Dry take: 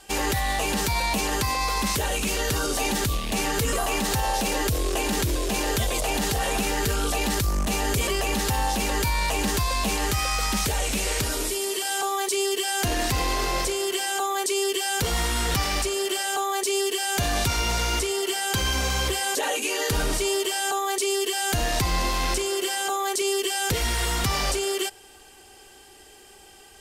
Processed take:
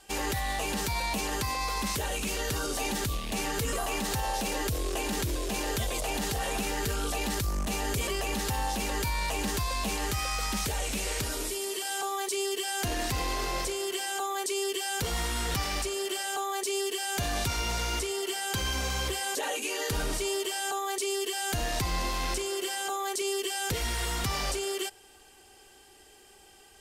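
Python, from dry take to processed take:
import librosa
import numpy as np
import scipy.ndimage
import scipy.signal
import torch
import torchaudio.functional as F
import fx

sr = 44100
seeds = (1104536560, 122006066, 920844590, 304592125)

y = x * 10.0 ** (-6.0 / 20.0)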